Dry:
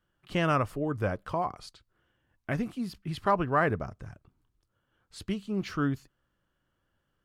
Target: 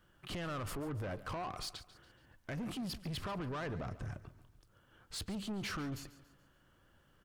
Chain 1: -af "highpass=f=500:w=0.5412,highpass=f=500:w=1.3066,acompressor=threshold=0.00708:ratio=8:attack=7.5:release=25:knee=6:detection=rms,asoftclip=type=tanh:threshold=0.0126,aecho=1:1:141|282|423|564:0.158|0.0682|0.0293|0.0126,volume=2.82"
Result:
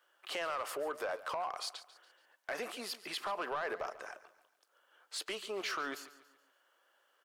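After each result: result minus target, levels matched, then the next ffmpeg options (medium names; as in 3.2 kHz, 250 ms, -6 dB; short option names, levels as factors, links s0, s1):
saturation: distortion -6 dB; 500 Hz band +3.0 dB
-af "highpass=f=500:w=0.5412,highpass=f=500:w=1.3066,acompressor=threshold=0.00708:ratio=8:attack=7.5:release=25:knee=6:detection=rms,asoftclip=type=tanh:threshold=0.00531,aecho=1:1:141|282|423|564:0.158|0.0682|0.0293|0.0126,volume=2.82"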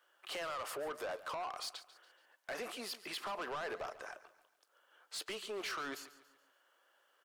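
500 Hz band +3.0 dB
-af "acompressor=threshold=0.00708:ratio=8:attack=7.5:release=25:knee=6:detection=rms,asoftclip=type=tanh:threshold=0.00531,aecho=1:1:141|282|423|564:0.158|0.0682|0.0293|0.0126,volume=2.82"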